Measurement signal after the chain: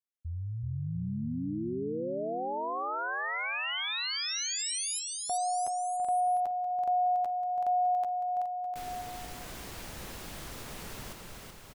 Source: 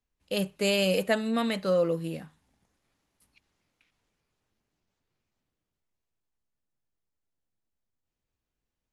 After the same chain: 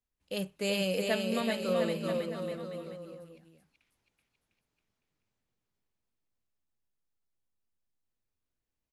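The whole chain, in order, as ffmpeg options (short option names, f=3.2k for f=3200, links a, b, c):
-af "aecho=1:1:380|703|977.6|1211|1409:0.631|0.398|0.251|0.158|0.1,volume=-6dB"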